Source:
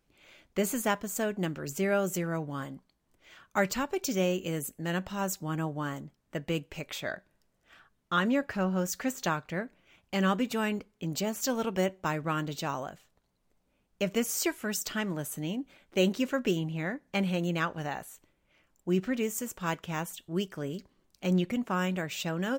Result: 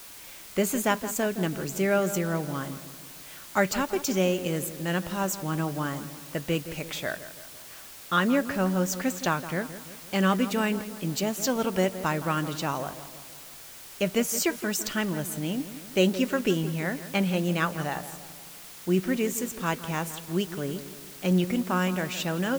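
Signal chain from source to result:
background noise white −49 dBFS
on a send: feedback echo with a low-pass in the loop 167 ms, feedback 55%, level −12.5 dB
on the sum: level +3.5 dB

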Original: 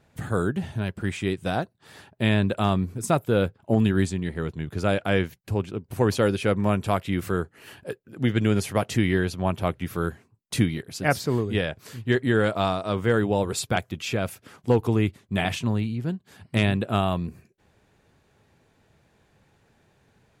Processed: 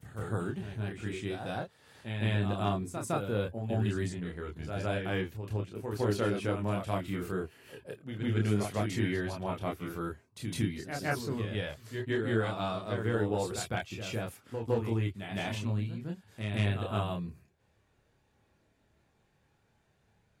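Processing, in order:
backwards echo 159 ms −6.5 dB
multi-voice chorus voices 4, 0.14 Hz, delay 28 ms, depth 1.9 ms
level −6.5 dB

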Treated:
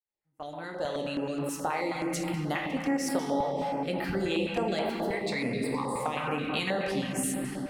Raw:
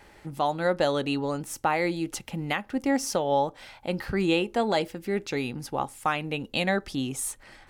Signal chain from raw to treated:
fade in at the beginning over 2.49 s
low-shelf EQ 110 Hz −8.5 dB
noise gate with hold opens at −46 dBFS
0:05.13–0:06.00: EQ curve with evenly spaced ripples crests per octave 0.97, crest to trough 15 dB
convolution reverb RT60 3.0 s, pre-delay 7 ms, DRR −0.5 dB
downward compressor 2.5 to 1, threshold −30 dBFS, peak gain reduction 9 dB
notch on a step sequencer 9.4 Hz 230–6,100 Hz
level +2 dB

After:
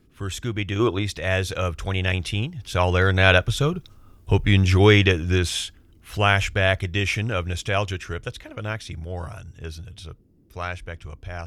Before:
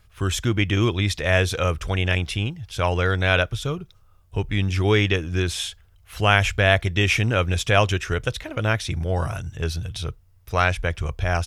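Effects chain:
source passing by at 0:04.18, 5 m/s, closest 5 metres
noise in a band 39–340 Hz −66 dBFS
gain on a spectral selection 0:00.80–0:01.03, 240–1,600 Hz +8 dB
level +6 dB

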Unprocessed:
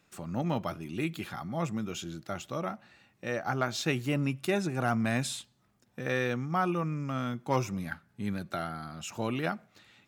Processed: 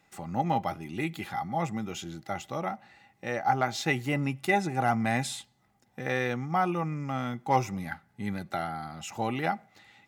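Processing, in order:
hollow resonant body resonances 800/2,000 Hz, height 16 dB, ringing for 65 ms

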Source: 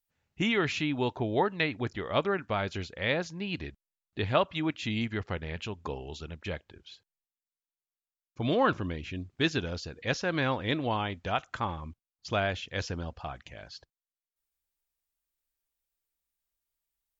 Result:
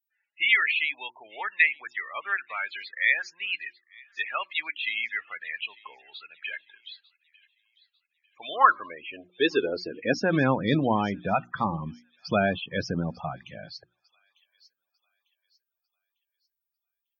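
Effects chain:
mains-hum notches 60/120/180/240/300/360 Hz
spectral peaks only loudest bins 32
high-pass filter sweep 1,900 Hz → 170 Hz, 0:08.09–0:10.48
on a send: delay with a high-pass on its return 898 ms, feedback 35%, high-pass 4,400 Hz, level −14 dB
on the sum: level +5 dB

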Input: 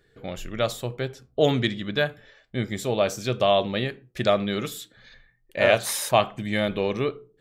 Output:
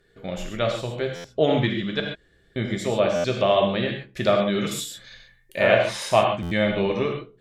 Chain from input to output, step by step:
0:02.00–0:02.56: fill with room tone
treble cut that deepens with the level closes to 3,000 Hz, closed at −19 dBFS
0:04.71–0:05.59: high-shelf EQ 3,300 Hz +10 dB
reverb whose tail is shaped and stops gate 160 ms flat, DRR 1.5 dB
buffer that repeats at 0:01.15/0:03.15/0:06.42, samples 512, times 7

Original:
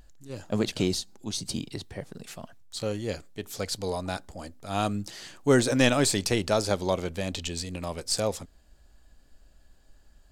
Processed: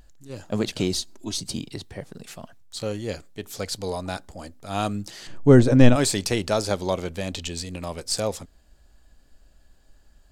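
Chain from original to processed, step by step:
0:00.94–0:01.40: comb filter 3.1 ms, depth 89%
0:05.27–0:05.96: spectral tilt −3.5 dB per octave
level +1.5 dB

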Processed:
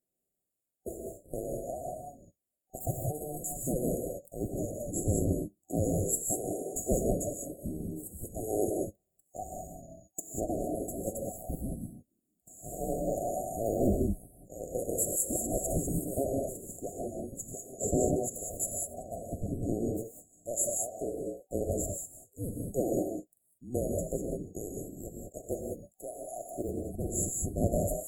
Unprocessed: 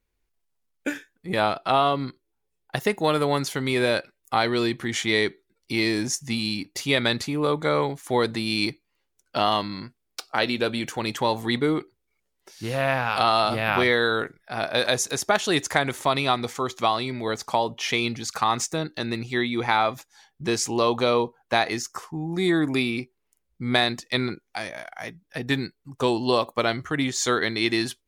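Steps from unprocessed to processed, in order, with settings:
neighbouring bands swapped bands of 2,000 Hz
reverb whose tail is shaped and stops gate 220 ms rising, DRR 0.5 dB
brick-wall band-stop 760–6,700 Hz

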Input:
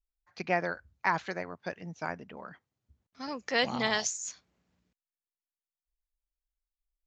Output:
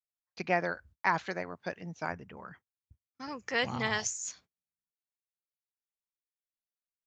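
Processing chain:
0:02.12–0:04.17: graphic EQ with 15 bands 100 Hz +10 dB, 250 Hz −4 dB, 630 Hz −6 dB, 4,000 Hz −8 dB
noise gate −56 dBFS, range −33 dB

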